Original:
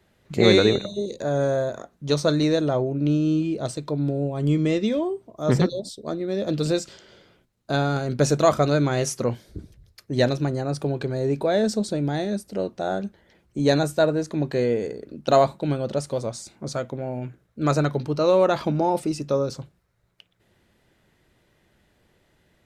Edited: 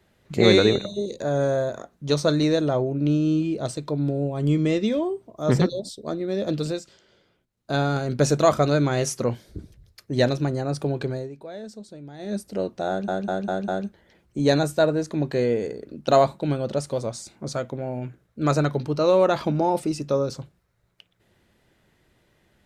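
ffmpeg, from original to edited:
ffmpeg -i in.wav -filter_complex "[0:a]asplit=9[link_01][link_02][link_03][link_04][link_05][link_06][link_07][link_08][link_09];[link_01]atrim=end=6.82,asetpts=PTS-STARTPTS,afade=type=out:start_time=6.49:duration=0.33:silence=0.354813[link_10];[link_02]atrim=start=6.82:end=7.47,asetpts=PTS-STARTPTS,volume=-9dB[link_11];[link_03]atrim=start=7.47:end=11.29,asetpts=PTS-STARTPTS,afade=type=in:duration=0.33:silence=0.354813,afade=type=out:start_time=3.63:duration=0.19:silence=0.158489[link_12];[link_04]atrim=start=11.29:end=12.18,asetpts=PTS-STARTPTS,volume=-16dB[link_13];[link_05]atrim=start=12.18:end=13.082,asetpts=PTS-STARTPTS,afade=type=in:duration=0.19:silence=0.158489[link_14];[link_06]atrim=start=12.878:end=13.082[link_15];[link_07]atrim=start=12.878:end=13.082[link_16];[link_08]atrim=start=12.878:end=13.082[link_17];[link_09]atrim=start=12.878[link_18];[link_10][link_11][link_12][link_13][link_14]concat=n=5:v=0:a=1[link_19];[link_19][link_15]acrossfade=duration=0.004:curve1=hsin:curve2=hsin[link_20];[link_20][link_16]acrossfade=duration=0.004:curve1=hsin:curve2=hsin[link_21];[link_21][link_17]acrossfade=duration=0.004:curve1=hsin:curve2=hsin[link_22];[link_22][link_18]acrossfade=duration=0.004:curve1=hsin:curve2=hsin" out.wav

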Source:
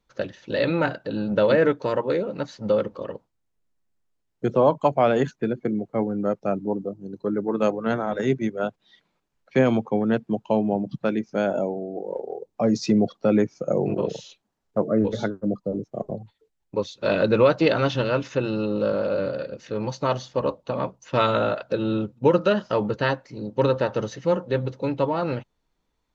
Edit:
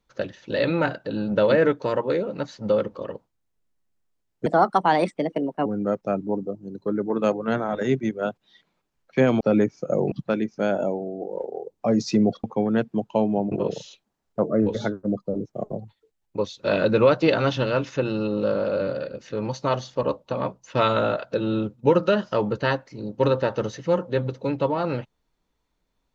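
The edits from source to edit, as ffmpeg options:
ffmpeg -i in.wav -filter_complex "[0:a]asplit=7[link_01][link_02][link_03][link_04][link_05][link_06][link_07];[link_01]atrim=end=4.464[link_08];[link_02]atrim=start=4.46:end=6.04,asetpts=PTS-STARTPTS,asetrate=58212,aresample=44100,atrim=end_sample=52786,asetpts=PTS-STARTPTS[link_09];[link_03]atrim=start=6.036:end=9.792[link_10];[link_04]atrim=start=13.188:end=13.902[link_11];[link_05]atrim=start=10.868:end=13.192[link_12];[link_06]atrim=start=9.788:end=10.872[link_13];[link_07]atrim=start=13.898[link_14];[link_08][link_09]acrossfade=duration=0.004:curve1=hsin:curve2=hsin[link_15];[link_15][link_10]acrossfade=duration=0.004:curve1=hsin:curve2=hsin[link_16];[link_16][link_11]acrossfade=duration=0.004:curve1=hsin:curve2=hsin[link_17];[link_17][link_12]acrossfade=duration=0.004:curve1=hsin:curve2=hsin[link_18];[link_18][link_13]acrossfade=duration=0.004:curve1=hsin:curve2=hsin[link_19];[link_19][link_14]acrossfade=duration=0.004:curve1=hsin:curve2=hsin" out.wav

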